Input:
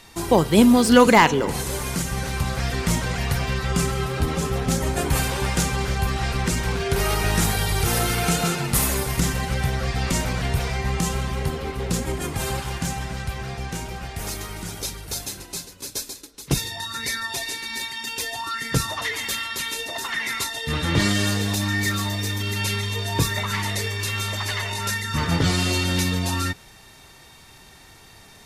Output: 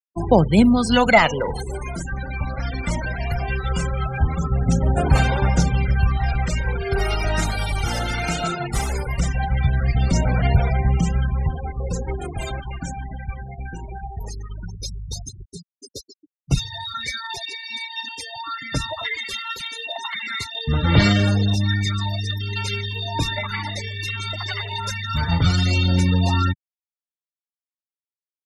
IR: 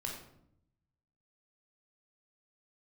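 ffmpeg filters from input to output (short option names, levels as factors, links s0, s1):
-filter_complex "[0:a]afftfilt=real='re*gte(hypot(re,im),0.0562)':imag='im*gte(hypot(re,im),0.0562)':win_size=1024:overlap=0.75,aecho=1:1:1.4:0.38,acrossover=split=160|650|7700[s0][s1][s2][s3];[s3]acompressor=threshold=0.00224:ratio=6[s4];[s0][s1][s2][s4]amix=inputs=4:normalize=0,aphaser=in_gain=1:out_gain=1:delay=3.5:decay=0.54:speed=0.19:type=sinusoidal,volume=0.841"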